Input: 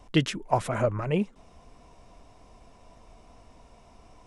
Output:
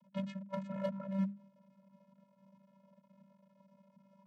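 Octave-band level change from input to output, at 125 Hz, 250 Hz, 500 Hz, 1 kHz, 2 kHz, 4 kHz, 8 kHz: −13.5 dB, −8.0 dB, −14.0 dB, −18.0 dB, −19.5 dB, below −20 dB, below −25 dB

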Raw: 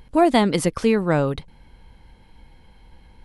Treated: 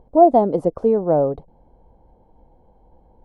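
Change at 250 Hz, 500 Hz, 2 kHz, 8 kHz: −1.0 dB, +5.0 dB, below −20 dB, below −25 dB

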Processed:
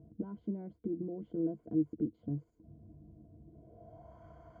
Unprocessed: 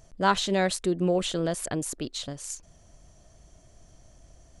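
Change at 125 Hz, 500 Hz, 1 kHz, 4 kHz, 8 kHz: −8.5 dB, −14.0 dB, below −25 dB, below −40 dB, below −40 dB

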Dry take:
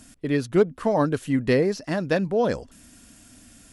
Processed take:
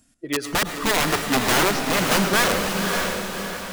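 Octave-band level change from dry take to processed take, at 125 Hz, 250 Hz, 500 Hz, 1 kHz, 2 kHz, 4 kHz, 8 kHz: −1.5, −0.5, −2.5, +8.5, +11.0, +17.0, +19.0 decibels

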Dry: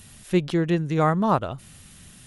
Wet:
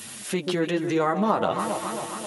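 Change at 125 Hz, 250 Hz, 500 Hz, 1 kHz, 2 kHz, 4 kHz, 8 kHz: −8.5 dB, −2.5 dB, +0.5 dB, 0.0 dB, +1.5 dB, +4.5 dB, can't be measured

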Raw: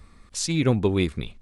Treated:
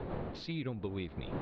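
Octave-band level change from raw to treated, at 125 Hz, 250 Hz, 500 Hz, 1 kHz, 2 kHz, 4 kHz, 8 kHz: −14.0 dB, −14.5 dB, −14.5 dB, −9.5 dB, −13.5 dB, −14.5 dB, below −35 dB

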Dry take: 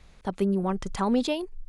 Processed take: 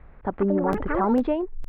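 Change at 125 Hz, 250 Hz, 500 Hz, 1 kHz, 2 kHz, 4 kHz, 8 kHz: +0.5 dB, +2.5 dB, +4.5 dB, +5.0 dB, +5.5 dB, below −10 dB, below −15 dB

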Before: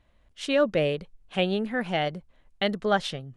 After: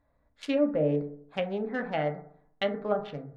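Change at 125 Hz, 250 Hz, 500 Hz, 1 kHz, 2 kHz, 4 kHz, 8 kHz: −2.5 dB, −1.5 dB, −2.5 dB, −5.5 dB, −7.0 dB, −10.0 dB, can't be measured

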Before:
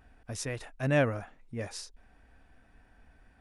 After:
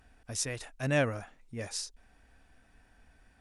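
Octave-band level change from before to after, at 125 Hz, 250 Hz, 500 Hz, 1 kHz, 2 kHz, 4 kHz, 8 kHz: −2.5, −2.5, −2.5, −2.0, −0.5, +4.0, +6.0 decibels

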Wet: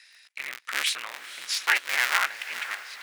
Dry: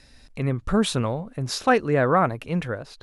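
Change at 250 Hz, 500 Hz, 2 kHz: below −30 dB, −23.5 dB, +5.0 dB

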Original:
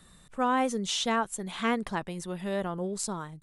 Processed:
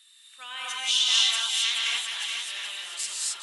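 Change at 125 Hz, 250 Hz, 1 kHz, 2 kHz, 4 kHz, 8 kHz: below −40 dB, below −35 dB, −10.5 dB, +4.5 dB, +14.5 dB, +8.5 dB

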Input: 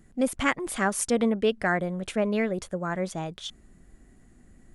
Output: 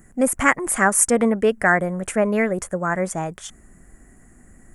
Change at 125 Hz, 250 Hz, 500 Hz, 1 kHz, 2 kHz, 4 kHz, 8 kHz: +5.0, +5.0, +6.5, +8.5, +9.0, −2.5, +12.5 decibels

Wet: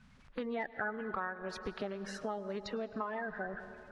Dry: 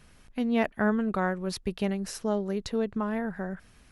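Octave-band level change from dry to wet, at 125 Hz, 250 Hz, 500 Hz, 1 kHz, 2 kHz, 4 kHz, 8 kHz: −14.5, −14.5, −8.5, −5.5, −4.0, −8.5, −13.5 decibels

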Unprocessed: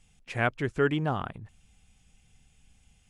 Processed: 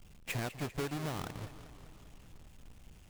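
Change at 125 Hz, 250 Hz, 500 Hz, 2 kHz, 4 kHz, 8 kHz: −7.0 dB, −9.0 dB, −12.0 dB, −11.5 dB, −3.0 dB, can't be measured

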